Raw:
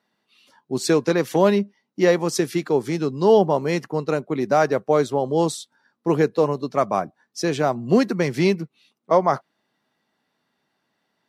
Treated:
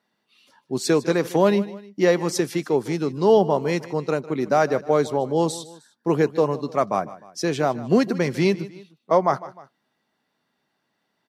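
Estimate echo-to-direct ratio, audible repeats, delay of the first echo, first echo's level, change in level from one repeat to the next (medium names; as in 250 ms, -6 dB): -16.5 dB, 2, 153 ms, -17.5 dB, -6.5 dB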